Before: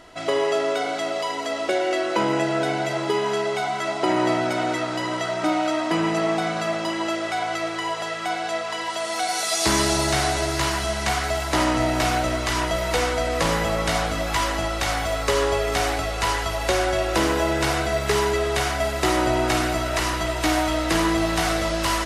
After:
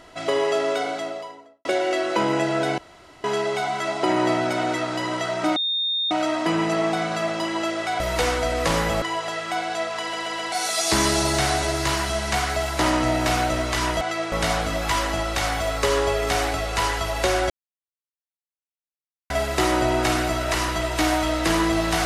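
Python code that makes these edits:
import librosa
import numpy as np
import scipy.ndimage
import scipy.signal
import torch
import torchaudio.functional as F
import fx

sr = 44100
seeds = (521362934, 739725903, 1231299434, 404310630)

y = fx.studio_fade_out(x, sr, start_s=0.74, length_s=0.91)
y = fx.edit(y, sr, fx.room_tone_fill(start_s=2.78, length_s=0.46),
    fx.insert_tone(at_s=5.56, length_s=0.55, hz=3660.0, db=-21.0),
    fx.swap(start_s=7.45, length_s=0.31, other_s=12.75, other_length_s=1.02),
    fx.stutter_over(start_s=8.74, slice_s=0.13, count=4),
    fx.silence(start_s=16.95, length_s=1.8), tone=tone)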